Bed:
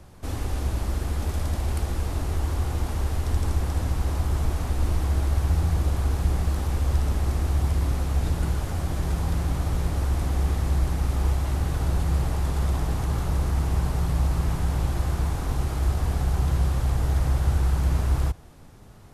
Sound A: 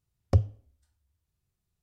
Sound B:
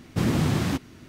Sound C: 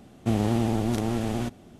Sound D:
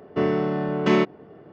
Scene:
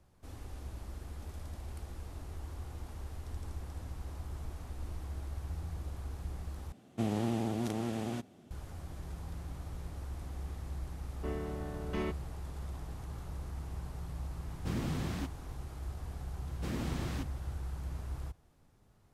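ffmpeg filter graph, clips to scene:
ffmpeg -i bed.wav -i cue0.wav -i cue1.wav -i cue2.wav -i cue3.wav -filter_complex "[2:a]asplit=2[link_01][link_02];[0:a]volume=-17.5dB[link_03];[3:a]highpass=95[link_04];[link_02]acrossover=split=160[link_05][link_06];[link_05]adelay=70[link_07];[link_07][link_06]amix=inputs=2:normalize=0[link_08];[link_03]asplit=2[link_09][link_10];[link_09]atrim=end=6.724[link_11];[link_04]atrim=end=1.79,asetpts=PTS-STARTPTS,volume=-8dB[link_12];[link_10]atrim=start=8.506[link_13];[4:a]atrim=end=1.52,asetpts=PTS-STARTPTS,volume=-17.5dB,afade=type=in:duration=0.004:curve=hsin,afade=type=out:start_time=1.516:duration=0.004:curve=hsin,adelay=11070[link_14];[link_01]atrim=end=1.08,asetpts=PTS-STARTPTS,volume=-13dB,afade=type=in:duration=0.004:curve=hsin,afade=type=out:start_time=1.076:duration=0.004:curve=hsin,adelay=14490[link_15];[link_08]atrim=end=1.08,asetpts=PTS-STARTPTS,volume=-13dB,afade=type=in:duration=0.004:curve=hsin,afade=type=out:start_time=1.076:duration=0.004:curve=hsin,adelay=16460[link_16];[link_11][link_12]acrossfade=duration=0.004:curve1=hsin:curve2=hsin[link_17];[link_17][link_13]acrossfade=duration=0.004:curve1=hsin:curve2=hsin[link_18];[link_18][link_14][link_15][link_16]amix=inputs=4:normalize=0" out.wav

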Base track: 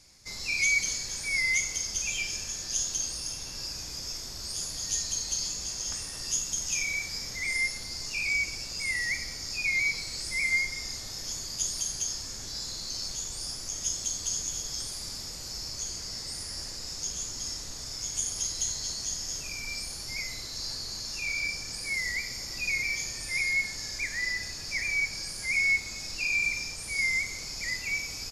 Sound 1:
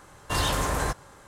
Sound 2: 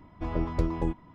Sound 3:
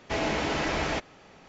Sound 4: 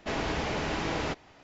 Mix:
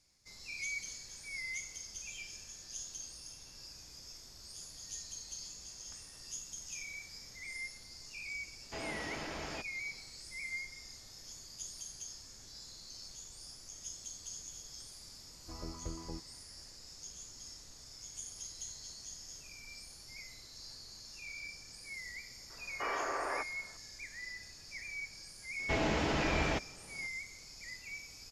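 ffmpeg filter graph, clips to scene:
ffmpeg -i bed.wav -i cue0.wav -i cue1.wav -i cue2.wav -filter_complex "[3:a]asplit=2[link_01][link_02];[0:a]volume=-14.5dB[link_03];[2:a]equalizer=frequency=1200:width=6.2:gain=7.5[link_04];[1:a]highpass=frequency=220:width_type=q:width=0.5412,highpass=frequency=220:width_type=q:width=1.307,lowpass=frequency=2300:width_type=q:width=0.5176,lowpass=frequency=2300:width_type=q:width=0.7071,lowpass=frequency=2300:width_type=q:width=1.932,afreqshift=120[link_05];[link_02]lowshelf=frequency=200:gain=6.5[link_06];[link_01]atrim=end=1.48,asetpts=PTS-STARTPTS,volume=-14dB,afade=type=in:duration=0.004:curve=hsin,afade=type=out:start_time=1.476:duration=0.004:curve=hsin,adelay=8620[link_07];[link_04]atrim=end=1.14,asetpts=PTS-STARTPTS,volume=-16dB,afade=type=in:duration=0.004:curve=hsin,afade=type=out:start_time=1.136:duration=0.004:curve=hsin,adelay=15270[link_08];[link_05]atrim=end=1.27,asetpts=PTS-STARTPTS,volume=-7.5dB,afade=type=in:duration=0.004:curve=hsin,afade=type=out:start_time=1.266:duration=0.004:curve=hsin,adelay=22500[link_09];[link_06]atrim=end=1.48,asetpts=PTS-STARTPTS,volume=-5.5dB,afade=type=in:duration=0.004:curve=hsin,afade=type=out:start_time=1.476:duration=0.004:curve=hsin,adelay=25590[link_10];[link_03][link_07][link_08][link_09][link_10]amix=inputs=5:normalize=0" out.wav

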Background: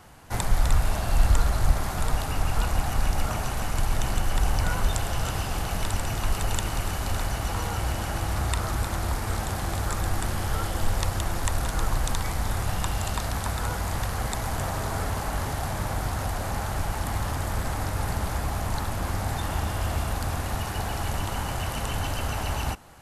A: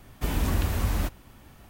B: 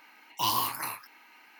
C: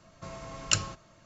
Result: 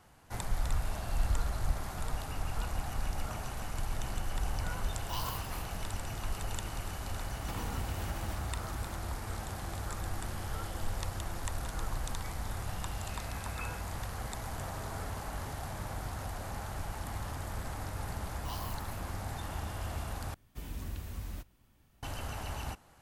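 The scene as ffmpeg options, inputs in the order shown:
ffmpeg -i bed.wav -i cue0.wav -i cue1.wav -i cue2.wav -filter_complex "[2:a]asplit=2[link_01][link_02];[1:a]asplit=2[link_03][link_04];[0:a]volume=-10.5dB[link_05];[link_03]acompressor=threshold=-35dB:ratio=6:attack=3.2:release=140:knee=1:detection=peak[link_06];[3:a]lowpass=frequency=2300:width_type=q:width=0.5098,lowpass=frequency=2300:width_type=q:width=0.6013,lowpass=frequency=2300:width_type=q:width=0.9,lowpass=frequency=2300:width_type=q:width=2.563,afreqshift=-2700[link_07];[link_04]equalizer=frequency=770:width=0.3:gain=-5[link_08];[link_05]asplit=2[link_09][link_10];[link_09]atrim=end=20.344[link_11];[link_08]atrim=end=1.69,asetpts=PTS-STARTPTS,volume=-14dB[link_12];[link_10]atrim=start=22.026[link_13];[link_01]atrim=end=1.59,asetpts=PTS-STARTPTS,volume=-12.5dB,afade=type=in:duration=0.004:curve=hsin,afade=type=out:start_time=1.586:duration=0.004:curve=hsin,adelay=4700[link_14];[link_06]atrim=end=1.69,asetpts=PTS-STARTPTS,volume=-1.5dB,afade=type=in:duration=0.004:curve=hsin,afade=type=out:start_time=1.686:duration=0.004:curve=hsin,adelay=7270[link_15];[link_07]atrim=end=1.25,asetpts=PTS-STARTPTS,volume=-12.5dB,afade=type=in:duration=0.004:curve=hsin,afade=type=out:start_time=1.246:duration=0.004:curve=hsin,adelay=12860[link_16];[link_02]atrim=end=1.59,asetpts=PTS-STARTPTS,volume=-17dB,afade=type=in:duration=0.004:curve=hsin,afade=type=out:start_time=1.586:duration=0.004:curve=hsin,adelay=18060[link_17];[link_11][link_12]acrossfade=duration=0.004:curve1=hsin:curve2=hsin[link_18];[link_18][link_13]acrossfade=duration=0.004:curve1=hsin:curve2=hsin[link_19];[link_19][link_14][link_15][link_16][link_17]amix=inputs=5:normalize=0" out.wav

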